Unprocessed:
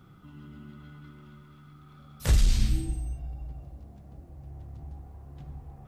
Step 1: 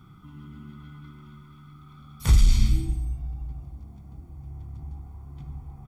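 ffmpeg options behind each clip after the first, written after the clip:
-af "aecho=1:1:0.9:0.68"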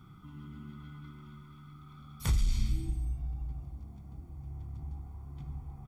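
-af "acompressor=threshold=0.0447:ratio=2,volume=0.708"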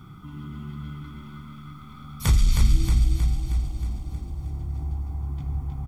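-af "aecho=1:1:315|630|945|1260|1575|1890|2205|2520:0.562|0.326|0.189|0.11|0.0636|0.0369|0.0214|0.0124,volume=2.82"

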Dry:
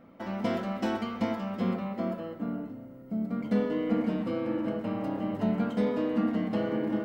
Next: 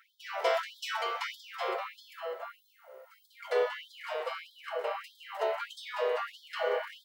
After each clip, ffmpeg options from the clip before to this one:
-af "lowshelf=f=300:g=-8.5,afftfilt=real='re*gte(b*sr/1024,370*pow(3200/370,0.5+0.5*sin(2*PI*1.6*pts/sr)))':imag='im*gte(b*sr/1024,370*pow(3200/370,0.5+0.5*sin(2*PI*1.6*pts/sr)))':win_size=1024:overlap=0.75,volume=2.24"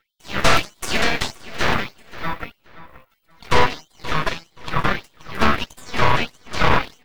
-filter_complex "[0:a]equalizer=f=2400:w=1.5:g=-2,aeval=exprs='0.158*(cos(1*acos(clip(val(0)/0.158,-1,1)))-cos(1*PI/2))+0.0794*(cos(4*acos(clip(val(0)/0.158,-1,1)))-cos(4*PI/2))+0.0282*(cos(7*acos(clip(val(0)/0.158,-1,1)))-cos(7*PI/2))+0.0708*(cos(8*acos(clip(val(0)/0.158,-1,1)))-cos(8*PI/2))':c=same,asplit=2[s0][s1];[s1]adelay=526,lowpass=f=4700:p=1,volume=0.15,asplit=2[s2][s3];[s3]adelay=526,lowpass=f=4700:p=1,volume=0.24[s4];[s0][s2][s4]amix=inputs=3:normalize=0,volume=2"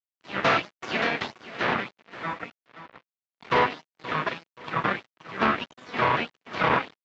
-af "aresample=16000,acrusher=bits=5:mix=0:aa=0.5,aresample=44100,highpass=170,lowpass=2900,volume=0.631"

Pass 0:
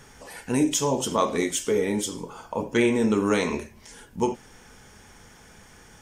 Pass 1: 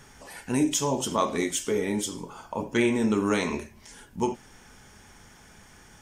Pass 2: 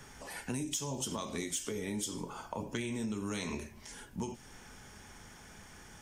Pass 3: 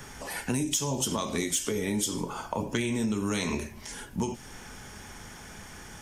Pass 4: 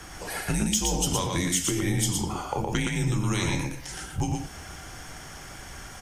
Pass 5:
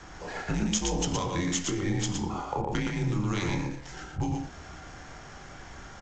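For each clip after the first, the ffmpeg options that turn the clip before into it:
-af "equalizer=f=480:t=o:w=0.22:g=-6,volume=0.841"
-filter_complex "[0:a]acrossover=split=180|3000[s0][s1][s2];[s1]acompressor=threshold=0.02:ratio=6[s3];[s0][s3][s2]amix=inputs=3:normalize=0,asoftclip=type=tanh:threshold=0.188,acompressor=threshold=0.0251:ratio=6,volume=0.891"
-af "aexciter=amount=1.2:drive=3:freq=11000,volume=2.51"
-af "afreqshift=-88,aecho=1:1:117:0.668,volume=1.26"
-filter_complex "[0:a]acrossover=split=170|2000[s0][s1][s2];[s1]asplit=2[s3][s4];[s4]adelay=29,volume=0.708[s5];[s3][s5]amix=inputs=2:normalize=0[s6];[s2]acrusher=bits=5:dc=4:mix=0:aa=0.000001[s7];[s0][s6][s7]amix=inputs=3:normalize=0,volume=0.708" -ar 16000 -c:a g722

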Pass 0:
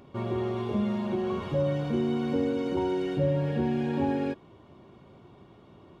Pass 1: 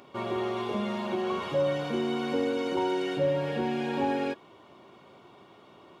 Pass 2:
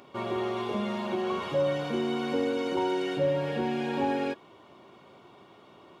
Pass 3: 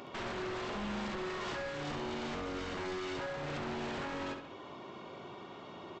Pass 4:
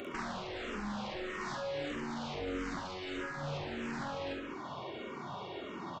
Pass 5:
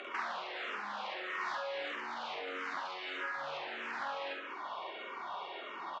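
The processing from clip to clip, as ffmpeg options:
-af "highpass=f=750:p=1,bandreject=f=1700:w=23,volume=2.11"
-af anull
-filter_complex "[0:a]acompressor=threshold=0.0158:ratio=16,aresample=16000,aeval=exprs='0.0106*(abs(mod(val(0)/0.0106+3,4)-2)-1)':c=same,aresample=44100,asplit=2[s0][s1];[s1]adelay=68,lowpass=f=4800:p=1,volume=0.501,asplit=2[s2][s3];[s3]adelay=68,lowpass=f=4800:p=1,volume=0.49,asplit=2[s4][s5];[s5]adelay=68,lowpass=f=4800:p=1,volume=0.49,asplit=2[s6][s7];[s7]adelay=68,lowpass=f=4800:p=1,volume=0.49,asplit=2[s8][s9];[s9]adelay=68,lowpass=f=4800:p=1,volume=0.49,asplit=2[s10][s11];[s11]adelay=68,lowpass=f=4800:p=1,volume=0.49[s12];[s0][s2][s4][s6][s8][s10][s12]amix=inputs=7:normalize=0,volume=1.68"
-filter_complex "[0:a]acompressor=threshold=0.00708:ratio=6,asplit=2[s0][s1];[s1]adelay=47,volume=0.668[s2];[s0][s2]amix=inputs=2:normalize=0,asplit=2[s3][s4];[s4]afreqshift=-1.6[s5];[s3][s5]amix=inputs=2:normalize=1,volume=2.37"
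-af "highpass=780,lowpass=3400,volume=1.68"

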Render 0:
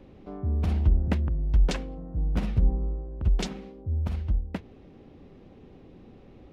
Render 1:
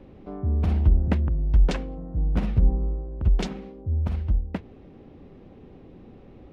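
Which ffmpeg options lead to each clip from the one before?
-af "highshelf=f=3800:g=-8.5,volume=1.41"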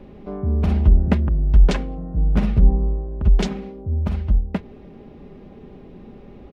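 -af "aecho=1:1:4.9:0.37,volume=1.78"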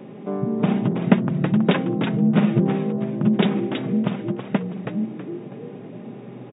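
-filter_complex "[0:a]asplit=6[s0][s1][s2][s3][s4][s5];[s1]adelay=324,afreqshift=-130,volume=0.562[s6];[s2]adelay=648,afreqshift=-260,volume=0.209[s7];[s3]adelay=972,afreqshift=-390,volume=0.0767[s8];[s4]adelay=1296,afreqshift=-520,volume=0.0285[s9];[s5]adelay=1620,afreqshift=-650,volume=0.0106[s10];[s0][s6][s7][s8][s9][s10]amix=inputs=6:normalize=0,afftfilt=real='re*between(b*sr/4096,110,3800)':imag='im*between(b*sr/4096,110,3800)':win_size=4096:overlap=0.75,volume=1.68"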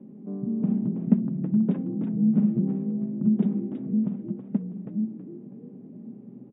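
-af "bandpass=f=220:t=q:w=2.7:csg=0,volume=0.794"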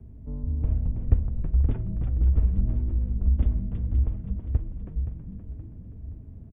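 -af "afreqshift=-150,aecho=1:1:523|1046|1569|2092|2615:0.335|0.154|0.0709|0.0326|0.015,volume=1.12"

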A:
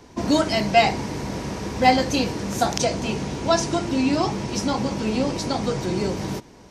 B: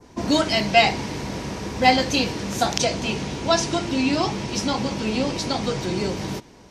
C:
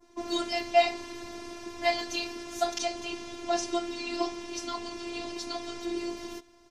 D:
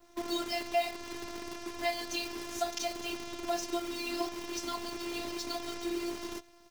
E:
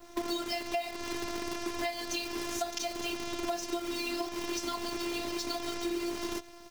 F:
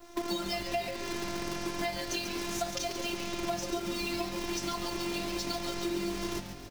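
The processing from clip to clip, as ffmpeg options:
-af "adynamicequalizer=threshold=0.0112:dfrequency=3200:dqfactor=0.83:tfrequency=3200:tqfactor=0.83:attack=5:release=100:ratio=0.375:range=3:mode=boostabove:tftype=bell,volume=0.891"
-af "aecho=1:1:5.6:0.82,afftfilt=real='hypot(re,im)*cos(PI*b)':imag='0':win_size=512:overlap=0.75,volume=0.376"
-af "acompressor=threshold=0.0251:ratio=2,acrusher=bits=8:dc=4:mix=0:aa=0.000001"
-af "acompressor=threshold=0.0126:ratio=10,volume=2.66"
-filter_complex "[0:a]asplit=8[s0][s1][s2][s3][s4][s5][s6][s7];[s1]adelay=139,afreqshift=-150,volume=0.355[s8];[s2]adelay=278,afreqshift=-300,volume=0.207[s9];[s3]adelay=417,afreqshift=-450,volume=0.119[s10];[s4]adelay=556,afreqshift=-600,volume=0.0692[s11];[s5]adelay=695,afreqshift=-750,volume=0.0403[s12];[s6]adelay=834,afreqshift=-900,volume=0.0232[s13];[s7]adelay=973,afreqshift=-1050,volume=0.0135[s14];[s0][s8][s9][s10][s11][s12][s13][s14]amix=inputs=8:normalize=0"

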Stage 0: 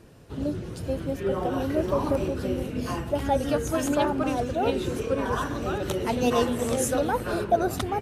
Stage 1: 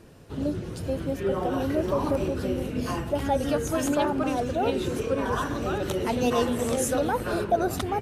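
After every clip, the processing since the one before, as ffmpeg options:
-filter_complex "[0:a]asplit=2[s0][s1];[s1]alimiter=limit=0.1:level=0:latency=1:release=82,volume=0.708[s2];[s0][s2]amix=inputs=2:normalize=0,bandreject=f=60:t=h:w=6,bandreject=f=120:t=h:w=6,volume=0.668"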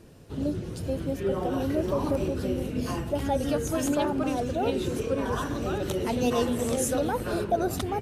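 -af "equalizer=f=1300:t=o:w=2.2:g=-4"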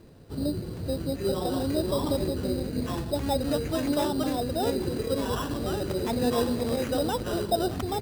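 -af "lowpass=f=2400:p=1,acrusher=samples=10:mix=1:aa=0.000001"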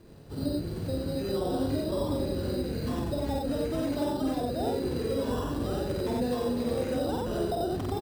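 -filter_complex "[0:a]acrossover=split=860|4900[s0][s1][s2];[s0]acompressor=threshold=0.0398:ratio=4[s3];[s1]acompressor=threshold=0.00562:ratio=4[s4];[s2]acompressor=threshold=0.00282:ratio=4[s5];[s3][s4][s5]amix=inputs=3:normalize=0,asplit=2[s6][s7];[s7]aecho=0:1:49.56|90.38:0.794|0.891[s8];[s6][s8]amix=inputs=2:normalize=0,volume=0.75"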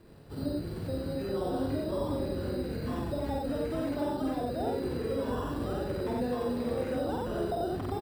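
-filter_complex "[0:a]equalizer=f=6400:w=5.7:g=-8,acrossover=split=1900[s0][s1];[s0]crystalizer=i=6.5:c=0[s2];[s1]alimiter=level_in=8.41:limit=0.0631:level=0:latency=1:release=25,volume=0.119[s3];[s2][s3]amix=inputs=2:normalize=0,volume=0.708"

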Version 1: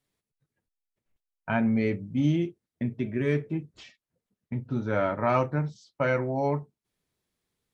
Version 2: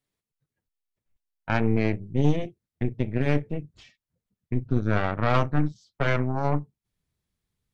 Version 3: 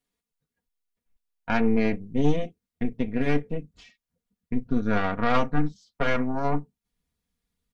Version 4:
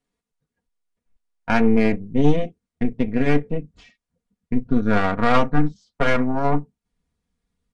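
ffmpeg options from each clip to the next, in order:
-af "asubboost=boost=3.5:cutoff=180,aeval=exprs='0.282*(cos(1*acos(clip(val(0)/0.282,-1,1)))-cos(1*PI/2))+0.0398*(cos(3*acos(clip(val(0)/0.282,-1,1)))-cos(3*PI/2))+0.126*(cos(4*acos(clip(val(0)/0.282,-1,1)))-cos(4*PI/2))+0.0178*(cos(5*acos(clip(val(0)/0.282,-1,1)))-cos(5*PI/2))':c=same,volume=0.75"
-af "aecho=1:1:4.2:0.68,volume=0.891"
-filter_complex "[0:a]asplit=2[s0][s1];[s1]adynamicsmooth=sensitivity=7.5:basefreq=2500,volume=0.891[s2];[s0][s2]amix=inputs=2:normalize=0,aresample=22050,aresample=44100"

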